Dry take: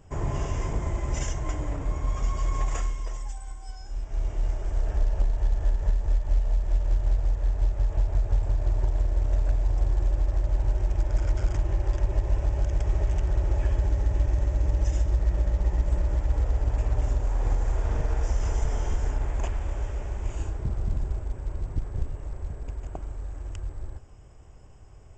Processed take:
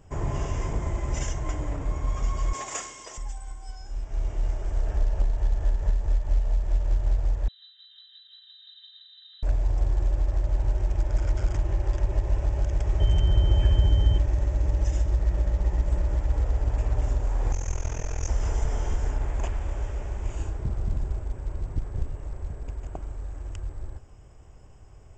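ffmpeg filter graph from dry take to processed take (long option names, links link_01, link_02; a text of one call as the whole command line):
ffmpeg -i in.wav -filter_complex "[0:a]asettb=1/sr,asplit=3[link_01][link_02][link_03];[link_01]atrim=end=2.534[link_04];[link_02]atrim=start=2.53:end=3.18,asetpts=PTS-STARTPTS,afade=type=in:duration=0.004:curve=qsin,afade=type=out:start_time=0.646:duration=0.004:curve=qsin,highpass=270,highshelf=frequency=3100:gain=10[link_05];[link_03]atrim=start=3.176[link_06];[link_04][link_05]acrossfade=duration=0.004:curve1=hsin:curve2=qsin[link_07];[link_07][link_06]acrossfade=duration=0.004:curve1=qsin:curve2=hsin,asettb=1/sr,asplit=3[link_08][link_09][link_10];[link_08]atrim=end=7.484[link_11];[link_09]atrim=start=7.48:end=9.43,asetpts=PTS-STARTPTS,afade=type=in:duration=0.004:curve=qsin,afade=type=out:start_time=1.946:duration=0.004:curve=qsin,asplit=3[link_12][link_13][link_14];[link_12]bandpass=frequency=300:width_type=q:width=8,volume=0dB[link_15];[link_13]bandpass=frequency=870:width_type=q:width=8,volume=-6dB[link_16];[link_14]bandpass=frequency=2240:width_type=q:width=8,volume=-9dB[link_17];[link_15][link_16][link_17]amix=inputs=3:normalize=0,lowpass=frequency=3400:width_type=q:width=0.5098,lowpass=frequency=3400:width_type=q:width=0.6013,lowpass=frequency=3400:width_type=q:width=0.9,lowpass=frequency=3400:width_type=q:width=2.563,afreqshift=-4000[link_18];[link_10]atrim=start=9.426[link_19];[link_11][link_18]acrossfade=duration=0.004:curve1=hsin:curve2=qsin[link_20];[link_20][link_19]acrossfade=duration=0.004:curve1=qsin:curve2=hsin,asettb=1/sr,asplit=3[link_21][link_22][link_23];[link_21]atrim=end=13.004[link_24];[link_22]atrim=start=13:end=14.18,asetpts=PTS-STARTPTS,afade=type=in:duration=0.004:curve=qsin,afade=type=out:start_time=1.176:duration=0.004:curve=qsin,equalizer=frequency=110:width_type=o:width=2.3:gain=7.5,aeval=exprs='val(0)+0.00891*sin(2*PI*3100*n/s)':channel_layout=same[link_25];[link_23]atrim=start=14.176[link_26];[link_24][link_25]acrossfade=duration=0.004:curve1=hsin:curve2=qsin[link_27];[link_27][link_26]acrossfade=duration=0.004:curve1=qsin:curve2=hsin,asettb=1/sr,asplit=3[link_28][link_29][link_30];[link_28]atrim=end=17.524[link_31];[link_29]atrim=start=17.52:end=18.28,asetpts=PTS-STARTPTS,afade=type=in:duration=0.004:curve=qsin,afade=type=out:start_time=0.756:duration=0.004:curve=qsin,lowpass=frequency=6400:width_type=q:width=12,equalizer=frequency=2500:width=2.8:gain=7.5,tremolo=f=42:d=0.919[link_32];[link_30]atrim=start=18.276[link_33];[link_31][link_32]acrossfade=duration=0.004:curve1=hsin:curve2=qsin[link_34];[link_34][link_33]acrossfade=duration=0.004:curve1=qsin:curve2=hsin" out.wav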